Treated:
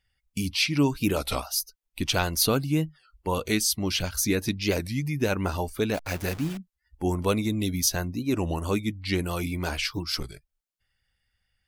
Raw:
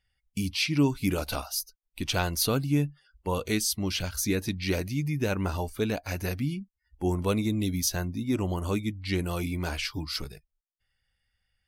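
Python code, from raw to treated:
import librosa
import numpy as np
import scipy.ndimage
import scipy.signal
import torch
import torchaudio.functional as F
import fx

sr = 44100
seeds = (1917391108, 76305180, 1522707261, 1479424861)

y = fx.delta_hold(x, sr, step_db=-38.0, at=(5.94, 6.59))
y = fx.hpss(y, sr, part='percussive', gain_db=4)
y = fx.record_warp(y, sr, rpm=33.33, depth_cents=160.0)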